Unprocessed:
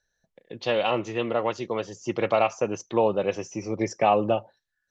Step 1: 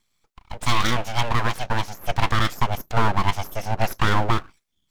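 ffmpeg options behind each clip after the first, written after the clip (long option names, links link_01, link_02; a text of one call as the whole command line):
ffmpeg -i in.wav -filter_complex "[0:a]highpass=220,acrossover=split=410|2500[link_01][link_02][link_03];[link_02]alimiter=limit=-20dB:level=0:latency=1:release=81[link_04];[link_01][link_04][link_03]amix=inputs=3:normalize=0,aeval=exprs='abs(val(0))':channel_layout=same,volume=8.5dB" out.wav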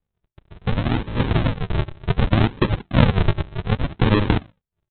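ffmpeg -i in.wav -af "highpass=64,dynaudnorm=framelen=280:gausssize=7:maxgain=11.5dB,aresample=8000,acrusher=samples=22:mix=1:aa=0.000001:lfo=1:lforange=22:lforate=0.66,aresample=44100,volume=-1dB" out.wav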